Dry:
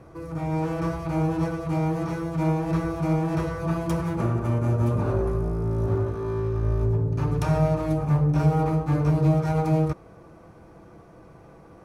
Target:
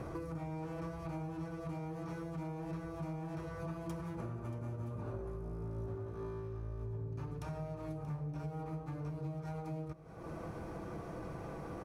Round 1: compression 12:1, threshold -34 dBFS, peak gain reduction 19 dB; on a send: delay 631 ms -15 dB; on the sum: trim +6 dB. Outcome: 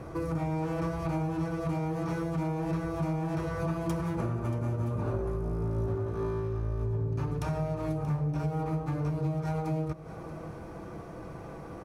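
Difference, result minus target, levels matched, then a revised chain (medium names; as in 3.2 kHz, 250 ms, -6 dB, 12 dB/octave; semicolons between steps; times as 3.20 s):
compression: peak gain reduction -10.5 dB
compression 12:1, threshold -45.5 dBFS, peak gain reduction 30 dB; on a send: delay 631 ms -15 dB; on the sum: trim +6 dB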